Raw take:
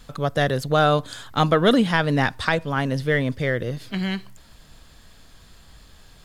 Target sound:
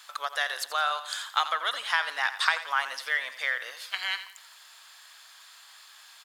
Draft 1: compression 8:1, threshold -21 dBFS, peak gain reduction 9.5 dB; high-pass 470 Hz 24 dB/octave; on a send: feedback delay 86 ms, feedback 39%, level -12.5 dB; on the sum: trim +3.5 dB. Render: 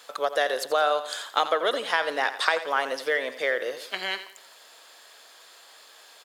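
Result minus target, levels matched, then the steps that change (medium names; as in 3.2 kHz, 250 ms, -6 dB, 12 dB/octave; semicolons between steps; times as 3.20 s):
500 Hz band +14.0 dB
change: high-pass 950 Hz 24 dB/octave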